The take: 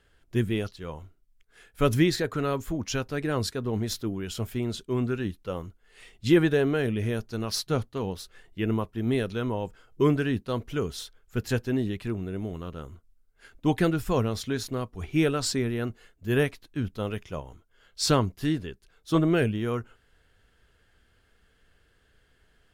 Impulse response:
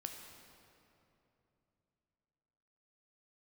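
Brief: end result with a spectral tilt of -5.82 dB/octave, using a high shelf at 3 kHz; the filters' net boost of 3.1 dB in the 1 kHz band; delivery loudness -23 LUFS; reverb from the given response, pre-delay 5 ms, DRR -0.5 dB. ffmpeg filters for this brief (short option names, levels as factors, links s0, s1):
-filter_complex "[0:a]equalizer=f=1000:t=o:g=4.5,highshelf=f=3000:g=-4,asplit=2[s0][s1];[1:a]atrim=start_sample=2205,adelay=5[s2];[s1][s2]afir=irnorm=-1:irlink=0,volume=1.41[s3];[s0][s3]amix=inputs=2:normalize=0,volume=1.26"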